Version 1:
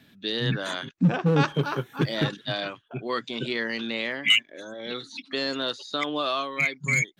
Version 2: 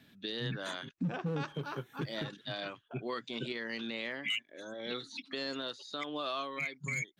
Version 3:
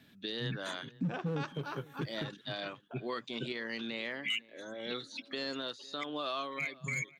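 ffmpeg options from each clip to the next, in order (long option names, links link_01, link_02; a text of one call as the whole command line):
ffmpeg -i in.wav -af "alimiter=limit=-21.5dB:level=0:latency=1:release=311,volume=-5dB" out.wav
ffmpeg -i in.wav -filter_complex "[0:a]asplit=2[link_01][link_02];[link_02]adelay=501.5,volume=-21dB,highshelf=frequency=4000:gain=-11.3[link_03];[link_01][link_03]amix=inputs=2:normalize=0" out.wav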